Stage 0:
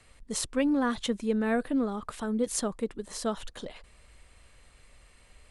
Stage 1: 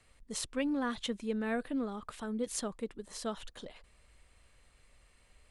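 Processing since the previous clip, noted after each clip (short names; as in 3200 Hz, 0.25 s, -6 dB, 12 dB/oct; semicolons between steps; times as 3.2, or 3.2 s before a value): dynamic EQ 2900 Hz, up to +4 dB, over -47 dBFS, Q 0.84; gain -7 dB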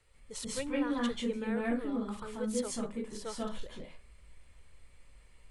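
reverb RT60 0.30 s, pre-delay 0.136 s, DRR -3.5 dB; gain -5 dB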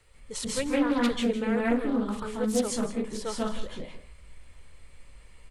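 echo 0.164 s -14 dB; Doppler distortion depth 0.22 ms; gain +7 dB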